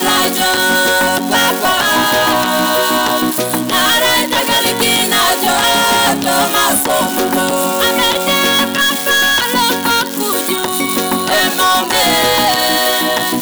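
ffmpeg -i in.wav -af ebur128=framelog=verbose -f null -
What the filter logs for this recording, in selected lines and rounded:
Integrated loudness:
  I:         -11.8 LUFS
  Threshold: -21.8 LUFS
Loudness range:
  LRA:         1.2 LU
  Threshold: -31.8 LUFS
  LRA low:   -12.4 LUFS
  LRA high:  -11.1 LUFS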